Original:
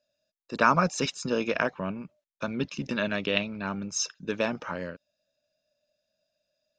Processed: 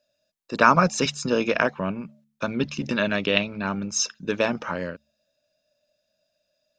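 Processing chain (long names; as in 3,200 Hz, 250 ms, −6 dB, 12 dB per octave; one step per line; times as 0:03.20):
hum removal 72.7 Hz, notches 3
level +5 dB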